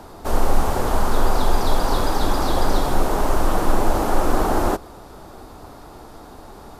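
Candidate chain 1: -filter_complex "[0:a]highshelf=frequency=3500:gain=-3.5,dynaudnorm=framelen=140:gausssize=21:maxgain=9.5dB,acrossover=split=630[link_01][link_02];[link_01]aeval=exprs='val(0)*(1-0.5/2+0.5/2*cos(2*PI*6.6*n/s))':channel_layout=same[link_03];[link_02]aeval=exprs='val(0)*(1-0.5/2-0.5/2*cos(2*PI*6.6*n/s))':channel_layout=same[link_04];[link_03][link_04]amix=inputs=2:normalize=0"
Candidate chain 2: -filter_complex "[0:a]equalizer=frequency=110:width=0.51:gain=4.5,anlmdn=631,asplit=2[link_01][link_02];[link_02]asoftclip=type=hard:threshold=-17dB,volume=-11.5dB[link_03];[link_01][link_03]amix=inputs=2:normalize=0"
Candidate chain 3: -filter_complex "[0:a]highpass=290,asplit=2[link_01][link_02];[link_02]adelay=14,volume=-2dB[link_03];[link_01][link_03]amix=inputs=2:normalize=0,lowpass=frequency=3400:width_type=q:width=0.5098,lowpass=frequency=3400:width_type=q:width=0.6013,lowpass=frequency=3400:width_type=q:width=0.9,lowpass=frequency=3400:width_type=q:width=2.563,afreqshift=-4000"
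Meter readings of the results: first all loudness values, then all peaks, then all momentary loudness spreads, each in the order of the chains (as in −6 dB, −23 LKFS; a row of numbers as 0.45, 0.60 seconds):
−22.5, −20.5, −19.0 LKFS; −3.0, −3.0, −8.0 dBFS; 21, 2, 21 LU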